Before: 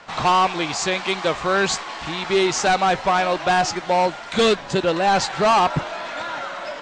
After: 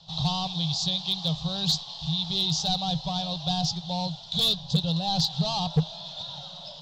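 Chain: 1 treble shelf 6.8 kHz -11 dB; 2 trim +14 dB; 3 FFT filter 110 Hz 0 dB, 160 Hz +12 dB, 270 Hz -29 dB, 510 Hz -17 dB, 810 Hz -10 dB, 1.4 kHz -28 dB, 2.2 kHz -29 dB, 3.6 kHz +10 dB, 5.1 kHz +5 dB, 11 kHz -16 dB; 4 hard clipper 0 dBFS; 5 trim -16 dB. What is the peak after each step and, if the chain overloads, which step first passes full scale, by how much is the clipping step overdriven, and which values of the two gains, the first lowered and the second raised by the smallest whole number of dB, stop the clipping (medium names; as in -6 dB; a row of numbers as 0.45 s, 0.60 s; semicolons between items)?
-12.0 dBFS, +2.0 dBFS, +9.0 dBFS, 0.0 dBFS, -16.0 dBFS; step 2, 9.0 dB; step 2 +5 dB, step 5 -7 dB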